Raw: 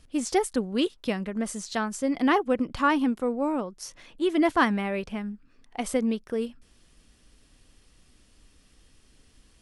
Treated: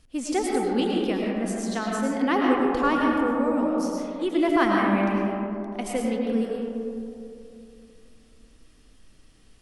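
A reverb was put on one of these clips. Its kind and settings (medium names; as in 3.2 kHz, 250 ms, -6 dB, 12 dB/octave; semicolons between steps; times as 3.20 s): algorithmic reverb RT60 2.7 s, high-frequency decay 0.3×, pre-delay 65 ms, DRR -2.5 dB; trim -2.5 dB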